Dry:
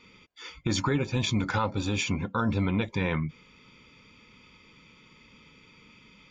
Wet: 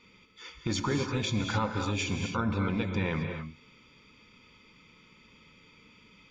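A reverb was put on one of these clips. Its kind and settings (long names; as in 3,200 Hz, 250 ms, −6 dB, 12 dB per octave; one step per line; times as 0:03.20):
reverb whose tail is shaped and stops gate 290 ms rising, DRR 4.5 dB
level −3.5 dB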